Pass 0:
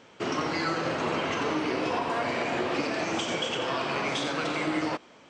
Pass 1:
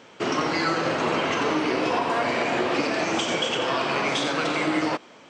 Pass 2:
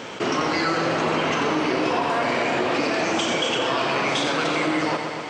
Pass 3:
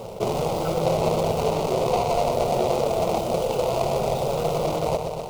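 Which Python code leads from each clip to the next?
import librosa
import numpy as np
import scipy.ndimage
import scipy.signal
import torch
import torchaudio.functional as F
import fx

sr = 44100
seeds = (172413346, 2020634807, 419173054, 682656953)

y1 = fx.highpass(x, sr, hz=120.0, slope=6)
y1 = y1 * librosa.db_to_amplitude(5.0)
y2 = fx.echo_feedback(y1, sr, ms=124, feedback_pct=59, wet_db=-11.5)
y2 = fx.env_flatten(y2, sr, amount_pct=50)
y3 = scipy.signal.medfilt(y2, 41)
y3 = fx.fixed_phaser(y3, sr, hz=700.0, stages=4)
y3 = y3 * librosa.db_to_amplitude(8.5)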